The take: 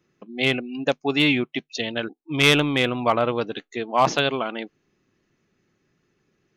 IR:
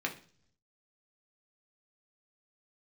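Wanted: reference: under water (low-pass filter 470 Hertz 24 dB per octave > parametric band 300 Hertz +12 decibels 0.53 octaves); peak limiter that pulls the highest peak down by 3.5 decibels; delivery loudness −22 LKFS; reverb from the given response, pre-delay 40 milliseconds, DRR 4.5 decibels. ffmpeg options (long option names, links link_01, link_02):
-filter_complex "[0:a]alimiter=limit=-11.5dB:level=0:latency=1,asplit=2[link_01][link_02];[1:a]atrim=start_sample=2205,adelay=40[link_03];[link_02][link_03]afir=irnorm=-1:irlink=0,volume=-9.5dB[link_04];[link_01][link_04]amix=inputs=2:normalize=0,lowpass=frequency=470:width=0.5412,lowpass=frequency=470:width=1.3066,equalizer=frequency=300:width_type=o:width=0.53:gain=12,volume=-3dB"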